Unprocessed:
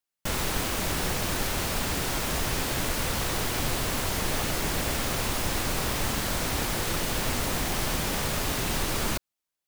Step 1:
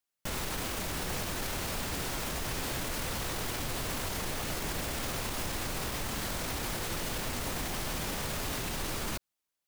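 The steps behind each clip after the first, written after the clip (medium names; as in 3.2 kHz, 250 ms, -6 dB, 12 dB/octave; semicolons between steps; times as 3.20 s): peak limiter -25.5 dBFS, peak gain reduction 11 dB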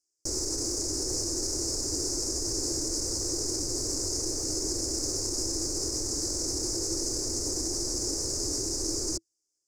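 FFT filter 110 Hz 0 dB, 190 Hz -15 dB, 330 Hz +12 dB, 690 Hz -8 dB, 2.2 kHz -19 dB, 3.3 kHz -30 dB, 5 kHz +13 dB, 7.1 kHz +14 dB, 16 kHz -18 dB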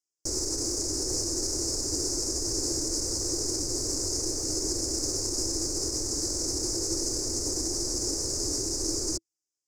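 upward expansion 1.5:1, over -49 dBFS; trim +2 dB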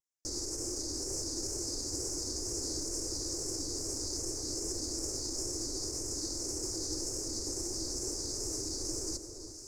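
wow and flutter 94 cents; echo whose repeats swap between lows and highs 347 ms, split 1.3 kHz, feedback 70%, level -8 dB; trim -7.5 dB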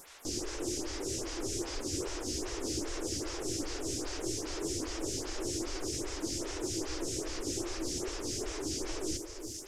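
one-bit delta coder 64 kbps, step -47 dBFS; lamp-driven phase shifter 2.5 Hz; trim +6.5 dB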